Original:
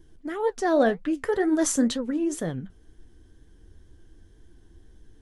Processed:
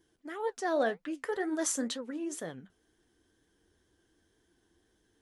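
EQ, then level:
high-pass filter 550 Hz 6 dB per octave
−5.0 dB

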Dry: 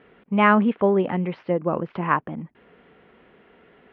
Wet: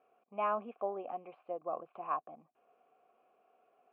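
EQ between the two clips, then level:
formant filter a
parametric band 180 Hz −8.5 dB 0.23 octaves
high-shelf EQ 2,300 Hz −8.5 dB
−3.5 dB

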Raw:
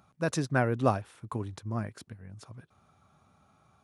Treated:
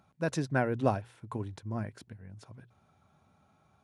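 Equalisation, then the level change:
high-shelf EQ 5,400 Hz −6 dB
mains-hum notches 60/120 Hz
notch filter 1,200 Hz, Q 6.8
−1.5 dB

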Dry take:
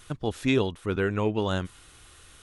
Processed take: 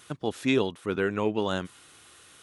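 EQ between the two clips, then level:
high-pass filter 160 Hz 12 dB per octave
0.0 dB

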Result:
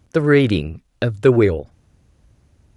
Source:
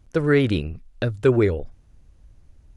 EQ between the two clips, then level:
high-pass filter 84 Hz 12 dB per octave
+4.5 dB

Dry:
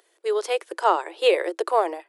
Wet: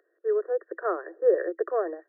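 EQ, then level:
high-pass filter 290 Hz
linear-phase brick-wall low-pass 1,900 Hz
phaser with its sweep stopped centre 370 Hz, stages 4
0.0 dB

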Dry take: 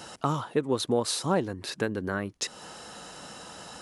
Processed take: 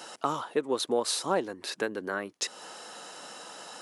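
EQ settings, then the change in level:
high-pass filter 330 Hz 12 dB per octave
0.0 dB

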